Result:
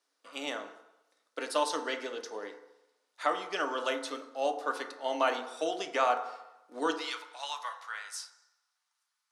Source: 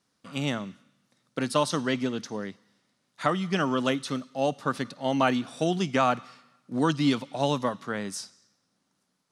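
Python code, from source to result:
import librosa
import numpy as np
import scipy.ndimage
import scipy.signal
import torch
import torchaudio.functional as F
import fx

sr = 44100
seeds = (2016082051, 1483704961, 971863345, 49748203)

y = fx.highpass(x, sr, hz=fx.steps((0.0, 390.0), (6.93, 1000.0)), slope=24)
y = fx.rev_fdn(y, sr, rt60_s=0.9, lf_ratio=0.75, hf_ratio=0.3, size_ms=20.0, drr_db=4.5)
y = y * librosa.db_to_amplitude(-4.5)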